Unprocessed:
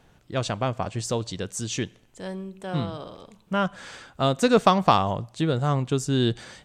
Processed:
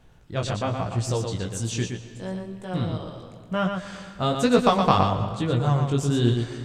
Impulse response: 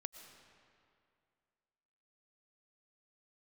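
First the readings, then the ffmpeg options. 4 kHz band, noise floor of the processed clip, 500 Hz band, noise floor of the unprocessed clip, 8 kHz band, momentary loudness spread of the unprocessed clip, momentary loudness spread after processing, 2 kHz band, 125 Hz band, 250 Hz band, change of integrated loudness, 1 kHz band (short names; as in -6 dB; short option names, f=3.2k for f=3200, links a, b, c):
-1.0 dB, -47 dBFS, 0.0 dB, -59 dBFS, -1.0 dB, 16 LU, 14 LU, -1.0 dB, +3.5 dB, +1.5 dB, +0.5 dB, -0.5 dB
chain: -filter_complex "[0:a]lowshelf=f=97:g=11,flanger=delay=16.5:depth=4.8:speed=1.1,asplit=2[a][b];[1:a]atrim=start_sample=2205,adelay=118[c];[b][c]afir=irnorm=-1:irlink=0,volume=-1.5dB[d];[a][d]amix=inputs=2:normalize=0,volume=1dB"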